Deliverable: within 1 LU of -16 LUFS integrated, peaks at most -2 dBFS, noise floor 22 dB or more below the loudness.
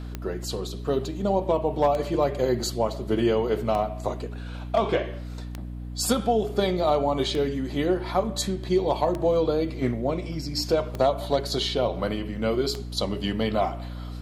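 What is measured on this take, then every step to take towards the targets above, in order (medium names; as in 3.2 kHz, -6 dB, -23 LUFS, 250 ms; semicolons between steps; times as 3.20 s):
clicks found 8; hum 60 Hz; highest harmonic 300 Hz; hum level -32 dBFS; loudness -26.0 LUFS; peak level -9.5 dBFS; loudness target -16.0 LUFS
-> de-click; hum notches 60/120/180/240/300 Hz; trim +10 dB; peak limiter -2 dBFS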